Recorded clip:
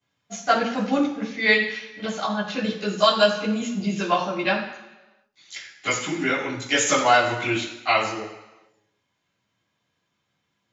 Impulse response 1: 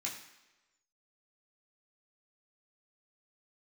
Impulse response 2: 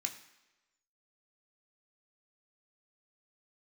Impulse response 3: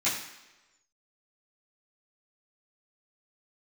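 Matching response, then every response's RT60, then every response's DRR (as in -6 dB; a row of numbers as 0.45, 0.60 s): 3; 1.1, 1.1, 1.1 s; -4.0, 3.5, -12.0 dB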